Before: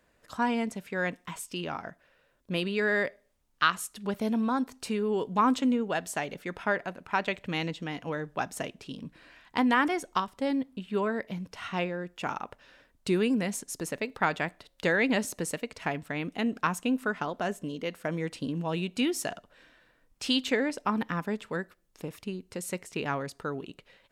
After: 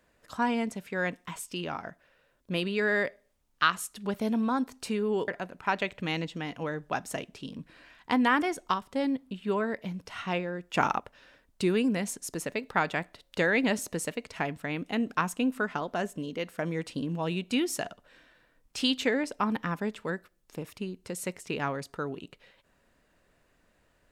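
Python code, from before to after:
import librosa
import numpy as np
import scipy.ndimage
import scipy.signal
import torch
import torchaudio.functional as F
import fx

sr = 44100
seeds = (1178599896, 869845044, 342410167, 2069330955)

y = fx.edit(x, sr, fx.cut(start_s=5.28, length_s=1.46),
    fx.clip_gain(start_s=12.2, length_s=0.25, db=7.5), tone=tone)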